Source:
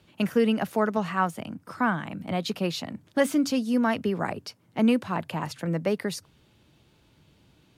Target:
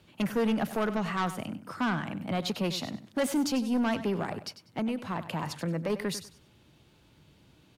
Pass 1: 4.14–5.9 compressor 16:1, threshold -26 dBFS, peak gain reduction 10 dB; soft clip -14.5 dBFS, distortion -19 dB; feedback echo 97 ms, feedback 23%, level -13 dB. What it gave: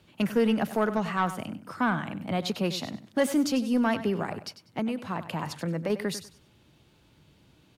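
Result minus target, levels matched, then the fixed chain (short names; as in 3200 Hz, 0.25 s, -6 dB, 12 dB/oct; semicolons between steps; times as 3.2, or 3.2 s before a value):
soft clip: distortion -9 dB
4.14–5.9 compressor 16:1, threshold -26 dBFS, peak gain reduction 10 dB; soft clip -22.5 dBFS, distortion -10 dB; feedback echo 97 ms, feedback 23%, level -13 dB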